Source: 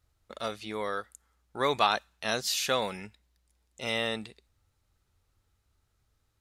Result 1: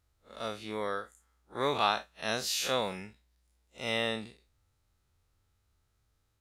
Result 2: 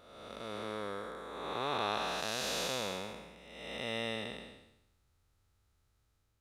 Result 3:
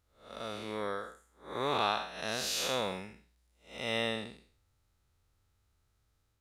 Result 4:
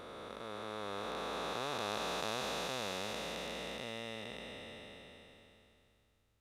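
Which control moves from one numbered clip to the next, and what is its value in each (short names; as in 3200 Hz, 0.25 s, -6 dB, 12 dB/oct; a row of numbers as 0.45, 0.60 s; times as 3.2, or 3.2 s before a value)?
time blur, width: 86, 554, 215, 1720 ms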